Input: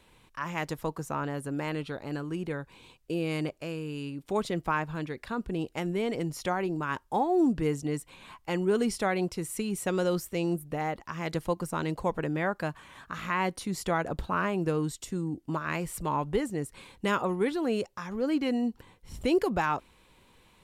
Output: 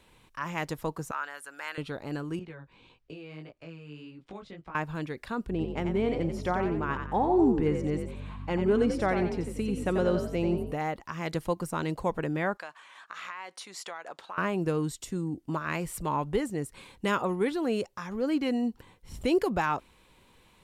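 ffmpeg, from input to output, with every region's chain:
-filter_complex "[0:a]asettb=1/sr,asplit=3[a][b][c];[a]atrim=end=1.114[d];[b]atrim=start=1.11:end=1.78,asetpts=PTS-STARTPTS,afade=t=in:d=0.004:c=qsin,afade=t=out:st=0.666:d=0.004:c=qsin,highpass=1.1k,equalizer=f=1.5k:w=3.4:g=7[e];[c]atrim=start=1.776[f];[d][e]acrossfade=d=0.004:c1=hsin:c2=qsin[g];[g][f]acrossfade=d=0.004:c1=qsin:c2=hsin,asettb=1/sr,asplit=3[h][i][j];[h]atrim=end=2.394[k];[i]atrim=start=2.39:end=4.75,asetpts=PTS-STARTPTS,afade=t=in:d=0.004:c=qsin,afade=t=out:st=2.356:d=0.004:c=qsin,lowpass=3.9k,acrossover=split=220|1000[l][m][n];[l]acompressor=threshold=-46dB:ratio=4[o];[m]acompressor=threshold=-45dB:ratio=4[p];[n]acompressor=threshold=-48dB:ratio=4[q];[o][p][q]amix=inputs=3:normalize=0,flanger=delay=16.5:depth=4.4:speed=1.7[r];[j]atrim=start=4.746[s];[k][r]acrossfade=d=0.004:c1=hsin:c2=qsin[t];[t][s]acrossfade=d=0.004:c1=qsin:c2=hsin,asettb=1/sr,asplit=3[u][v][w];[u]atrim=end=5.504[x];[v]atrim=start=5.5:end=10.72,asetpts=PTS-STARTPTS,afade=t=in:d=0.004:c=qsin,afade=t=out:st=5.216:d=0.004:c=qsin,aemphasis=mode=reproduction:type=75fm,aeval=exprs='val(0)+0.0112*(sin(2*PI*50*n/s)+sin(2*PI*2*50*n/s)/2+sin(2*PI*3*50*n/s)/3+sin(2*PI*4*50*n/s)/4+sin(2*PI*5*50*n/s)/5)':c=same,asplit=5[y][z][aa][ab][ac];[z]adelay=89,afreqshift=45,volume=-7dB[ad];[aa]adelay=178,afreqshift=90,volume=-16.1dB[ae];[ab]adelay=267,afreqshift=135,volume=-25.2dB[af];[ac]adelay=356,afreqshift=180,volume=-34.4dB[ag];[y][ad][ae][af][ag]amix=inputs=5:normalize=0,atrim=end_sample=230202[ah];[w]atrim=start=10.716[ai];[x][ah]acrossfade=d=0.004:c1=hsin:c2=qsin[aj];[aj][ai]acrossfade=d=0.004:c1=qsin:c2=hsin,asettb=1/sr,asplit=3[ak][al][am];[ak]atrim=end=12.574[an];[al]atrim=start=12.57:end=14.38,asetpts=PTS-STARTPTS,afade=t=in:d=0.004:c=qsin,afade=t=out:st=1.806:d=0.004:c=qsin,highpass=770,lowpass=7.8k,acompressor=threshold=-35dB:ratio=6:attack=3.2:release=140:knee=1:detection=peak[ao];[am]atrim=start=14.376[ap];[an][ao]acrossfade=d=0.004:c1=hsin:c2=qsin[aq];[aq][ap]acrossfade=d=0.004:c1=qsin:c2=hsin"

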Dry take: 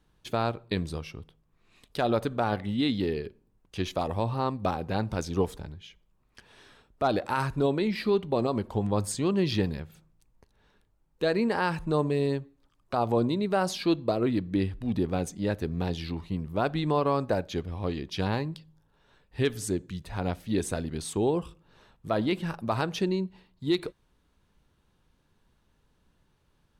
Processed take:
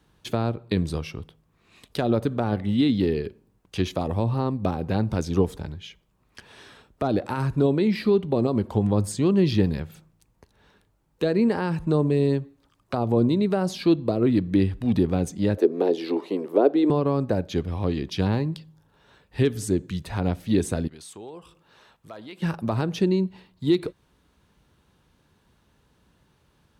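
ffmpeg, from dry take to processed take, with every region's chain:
-filter_complex "[0:a]asettb=1/sr,asplit=3[a][b][c];[a]atrim=end=15.574[d];[b]atrim=start=15.57:end=16.9,asetpts=PTS-STARTPTS,afade=t=in:d=0.004:c=qsin,afade=t=out:st=1.326:d=0.004:c=qsin,highpass=f=320:w=0.5412,highpass=f=320:w=1.3066,equalizer=f=430:t=o:w=2:g=13[e];[c]atrim=start=16.896[f];[d][e]acrossfade=d=0.004:c1=hsin:c2=qsin[g];[g][f]acrossfade=d=0.004:c1=qsin:c2=hsin,asettb=1/sr,asplit=3[h][i][j];[h]atrim=end=20.874[k];[i]atrim=start=20.87:end=22.42,asetpts=PTS-STARTPTS,afade=t=in:d=0.004:c=qsin,afade=t=out:st=1.546:d=0.004:c=qsin,lowshelf=f=360:g=-11,acompressor=threshold=-58dB:ratio=2:attack=3.2:release=140:knee=1:detection=peak,asoftclip=type=hard:threshold=-37dB[l];[j]atrim=start=22.416[m];[k][l]acrossfade=d=0.004:c1=hsin:c2=qsin[n];[n][m]acrossfade=d=0.004:c1=qsin:c2=hsin,acrossover=split=440[o][p];[p]acompressor=threshold=-41dB:ratio=2.5[q];[o][q]amix=inputs=2:normalize=0,highpass=55,volume=7dB"

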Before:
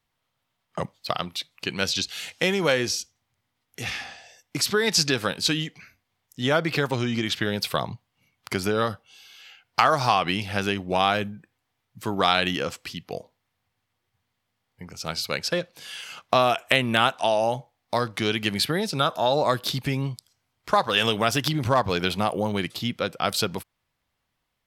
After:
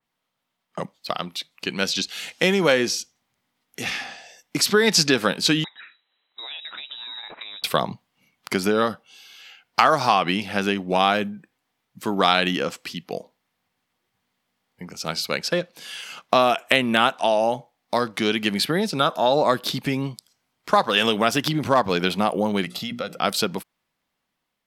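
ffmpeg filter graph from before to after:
-filter_complex "[0:a]asettb=1/sr,asplit=3[a][b][c];[a]atrim=end=5.644[d];[b]atrim=start=5.64:end=7.64,asetpts=PTS-STARTPTS,afade=t=in:d=0.004:c=qsin,afade=t=out:st=1.996:d=0.004:c=qsin,acompressor=threshold=-39dB:ratio=5:attack=3.2:release=140:knee=1:detection=peak,lowpass=f=3.4k:t=q:w=0.5098,lowpass=f=3.4k:t=q:w=0.6013,lowpass=f=3.4k:t=q:w=0.9,lowpass=f=3.4k:t=q:w=2.563,afreqshift=-4000[e];[c]atrim=start=7.636[f];[d][e]acrossfade=d=0.004:c1=hsin:c2=qsin[g];[g][f]acrossfade=d=0.004:c1=qsin:c2=hsin,asettb=1/sr,asplit=3[h][i][j];[h]atrim=end=22.634[k];[i]atrim=start=22.63:end=23.19,asetpts=PTS-STARTPTS,afade=t=in:d=0.004:c=qsin,afade=t=out:st=0.556:d=0.004:c=qsin,bandreject=f=60:t=h:w=6,bandreject=f=120:t=h:w=6,bandreject=f=180:t=h:w=6,bandreject=f=240:t=h:w=6,bandreject=f=300:t=h:w=6,bandreject=f=360:t=h:w=6,bandreject=f=420:t=h:w=6,aecho=1:1:1.5:0.53,atrim=end_sample=24696,acompressor=threshold=-27dB:ratio=4:attack=3.2:release=140:knee=1:detection=peak[l];[j]atrim=start=23.186[m];[k][l]acrossfade=d=0.004:c1=hsin:c2=qsin[n];[n][m]acrossfade=d=0.004:c1=qsin:c2=hsin,lowshelf=f=140:t=q:w=1.5:g=-9,dynaudnorm=f=500:g=7:m=11.5dB,adynamicequalizer=threshold=0.0282:dfrequency=3100:dqfactor=0.7:tfrequency=3100:tqfactor=0.7:attack=5:release=100:ratio=0.375:range=1.5:mode=cutabove:tftype=highshelf,volume=-1dB"

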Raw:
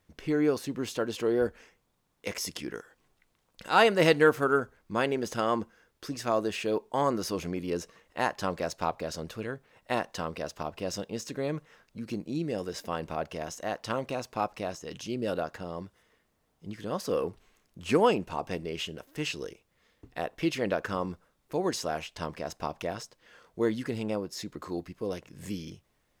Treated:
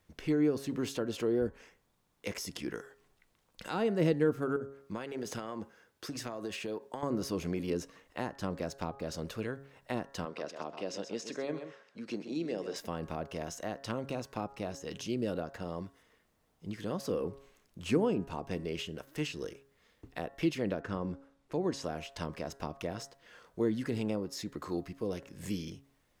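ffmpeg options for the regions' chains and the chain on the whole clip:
-filter_complex "[0:a]asettb=1/sr,asplit=3[a][b][c];[a]atrim=end=4.564[d];[b]atrim=start=4.56:end=7.03,asetpts=PTS-STARTPTS,afade=t=in:d=0.004:c=qsin,afade=t=out:st=2.466:d=0.004:c=qsin,highpass=82,acompressor=threshold=-33dB:ratio=6:attack=3.2:release=140:knee=1:detection=peak[e];[c]atrim=start=7.026[f];[d][e]acrossfade=d=0.004:c1=hsin:c2=qsin[g];[g][f]acrossfade=d=0.004:c1=qsin:c2=hsin,asettb=1/sr,asplit=3[h][i][j];[h]atrim=end=10.254[k];[i]atrim=start=10.25:end=12.76,asetpts=PTS-STARTPTS,afade=t=in:d=0.004:c=qsin,afade=t=out:st=2.506:d=0.004:c=qsin,highpass=280,lowpass=6.3k,aecho=1:1:129:0.299,atrim=end_sample=110691[l];[j]atrim=start=12.756[m];[k][l]acrossfade=d=0.004:c1=hsin:c2=qsin[n];[n][m]acrossfade=d=0.004:c1=qsin:c2=hsin,asettb=1/sr,asplit=3[o][p][q];[o]atrim=end=20.814[r];[p]atrim=start=20.81:end=21.84,asetpts=PTS-STARTPTS,afade=t=in:d=0.004:c=qsin,afade=t=out:st=1.026:d=0.004:c=qsin,lowpass=10k,highshelf=f=4.4k:g=-6[s];[q]atrim=start=21.836[t];[r][s]acrossfade=d=0.004:c1=hsin:c2=qsin[u];[u][t]acrossfade=d=0.004:c1=qsin:c2=hsin,bandreject=f=137.7:t=h:w=4,bandreject=f=275.4:t=h:w=4,bandreject=f=413.1:t=h:w=4,bandreject=f=550.8:t=h:w=4,bandreject=f=688.5:t=h:w=4,bandreject=f=826.2:t=h:w=4,bandreject=f=963.9:t=h:w=4,bandreject=f=1.1016k:t=h:w=4,bandreject=f=1.2393k:t=h:w=4,bandreject=f=1.377k:t=h:w=4,bandreject=f=1.5147k:t=h:w=4,bandreject=f=1.6524k:t=h:w=4,bandreject=f=1.7901k:t=h:w=4,bandreject=f=1.9278k:t=h:w=4,acrossover=split=400[v][w];[w]acompressor=threshold=-38dB:ratio=6[x];[v][x]amix=inputs=2:normalize=0"

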